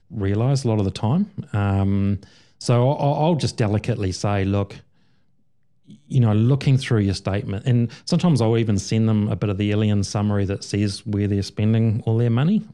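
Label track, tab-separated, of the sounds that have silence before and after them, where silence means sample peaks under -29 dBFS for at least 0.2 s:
2.610000	4.760000	sound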